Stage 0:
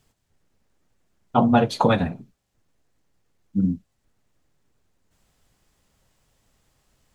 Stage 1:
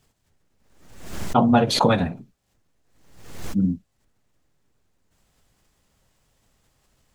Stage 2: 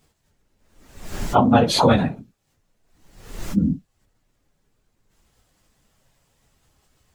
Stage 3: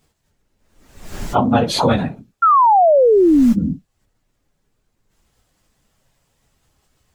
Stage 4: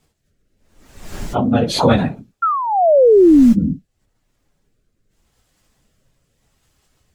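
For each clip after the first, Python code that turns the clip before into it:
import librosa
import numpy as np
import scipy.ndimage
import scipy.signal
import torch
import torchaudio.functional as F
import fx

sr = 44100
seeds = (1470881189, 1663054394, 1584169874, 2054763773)

y1 = fx.pre_swell(x, sr, db_per_s=63.0)
y2 = fx.phase_scramble(y1, sr, seeds[0], window_ms=50)
y2 = y2 * librosa.db_to_amplitude(2.0)
y3 = fx.spec_paint(y2, sr, seeds[1], shape='fall', start_s=2.42, length_s=1.11, low_hz=220.0, high_hz=1400.0, level_db=-11.0)
y4 = fx.rotary(y3, sr, hz=0.85)
y4 = y4 * librosa.db_to_amplitude(3.0)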